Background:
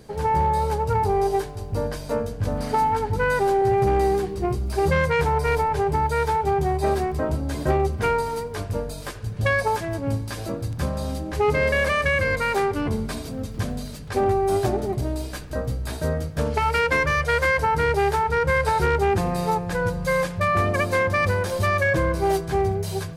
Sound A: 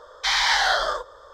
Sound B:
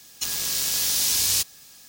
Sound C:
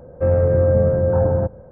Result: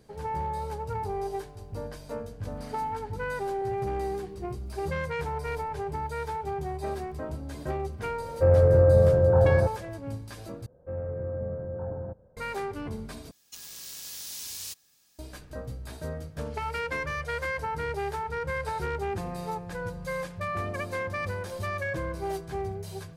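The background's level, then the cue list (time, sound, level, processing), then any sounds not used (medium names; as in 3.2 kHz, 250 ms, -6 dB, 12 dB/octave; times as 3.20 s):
background -11 dB
8.20 s: add C -2 dB + peaking EQ 230 Hz -13 dB 0.46 oct
10.66 s: replace with C -17.5 dB
13.31 s: replace with B -16.5 dB
not used: A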